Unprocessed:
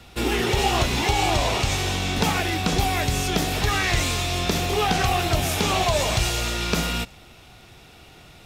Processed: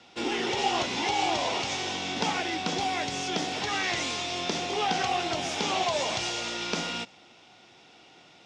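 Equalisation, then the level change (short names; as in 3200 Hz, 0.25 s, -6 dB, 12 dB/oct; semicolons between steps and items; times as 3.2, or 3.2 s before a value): speaker cabinet 300–6100 Hz, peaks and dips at 420 Hz -5 dB, 630 Hz -4 dB, 1200 Hz -6 dB, 1700 Hz -5 dB, 2500 Hz -4 dB, 4100 Hz -5 dB; -1.5 dB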